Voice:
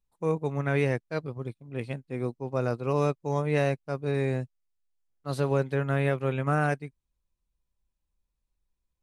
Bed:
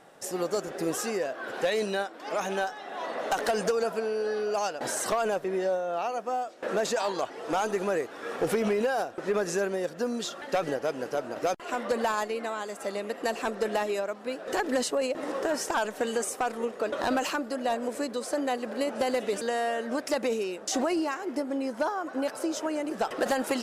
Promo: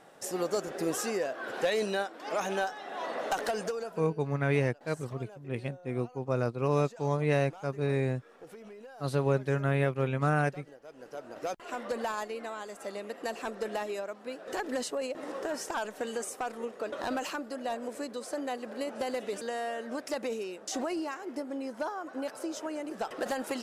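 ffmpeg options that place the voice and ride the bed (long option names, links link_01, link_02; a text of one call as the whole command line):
ffmpeg -i stem1.wav -i stem2.wav -filter_complex "[0:a]adelay=3750,volume=-1.5dB[link_01];[1:a]volume=14.5dB,afade=type=out:start_time=3.16:duration=1:silence=0.0944061,afade=type=in:start_time=10.84:duration=0.75:silence=0.158489[link_02];[link_01][link_02]amix=inputs=2:normalize=0" out.wav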